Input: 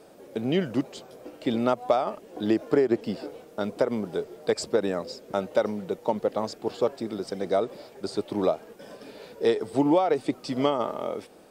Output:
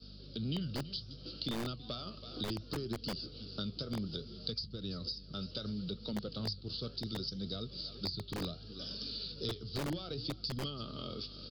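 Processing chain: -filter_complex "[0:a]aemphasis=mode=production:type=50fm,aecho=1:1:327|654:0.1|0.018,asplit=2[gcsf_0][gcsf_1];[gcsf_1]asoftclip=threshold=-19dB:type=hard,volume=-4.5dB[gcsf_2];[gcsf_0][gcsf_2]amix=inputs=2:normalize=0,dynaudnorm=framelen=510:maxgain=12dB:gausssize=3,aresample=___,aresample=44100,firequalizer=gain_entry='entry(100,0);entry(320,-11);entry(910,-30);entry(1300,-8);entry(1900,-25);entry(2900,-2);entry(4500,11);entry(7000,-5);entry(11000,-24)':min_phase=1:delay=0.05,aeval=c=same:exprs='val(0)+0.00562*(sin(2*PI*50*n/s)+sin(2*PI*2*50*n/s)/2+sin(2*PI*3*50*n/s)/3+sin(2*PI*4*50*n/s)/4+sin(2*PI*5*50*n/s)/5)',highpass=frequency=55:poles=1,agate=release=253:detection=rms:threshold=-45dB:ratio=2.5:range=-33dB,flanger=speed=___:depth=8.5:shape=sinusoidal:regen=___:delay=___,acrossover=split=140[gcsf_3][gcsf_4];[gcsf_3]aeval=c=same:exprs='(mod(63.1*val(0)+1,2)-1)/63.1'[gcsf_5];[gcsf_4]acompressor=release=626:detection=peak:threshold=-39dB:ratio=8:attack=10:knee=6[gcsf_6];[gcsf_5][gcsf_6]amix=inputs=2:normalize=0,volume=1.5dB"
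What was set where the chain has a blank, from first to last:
11025, 0.66, 75, 4.2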